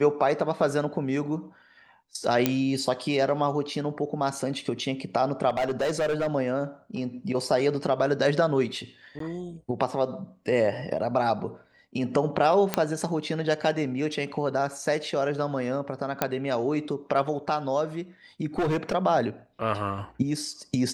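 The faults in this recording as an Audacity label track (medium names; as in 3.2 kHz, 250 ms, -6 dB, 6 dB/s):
2.460000	2.460000	pop -6 dBFS
5.490000	6.280000	clipped -22 dBFS
9.190000	9.200000	dropout 13 ms
12.740000	12.740000	pop -7 dBFS
16.220000	16.220000	pop -8 dBFS
18.580000	18.950000	clipped -21.5 dBFS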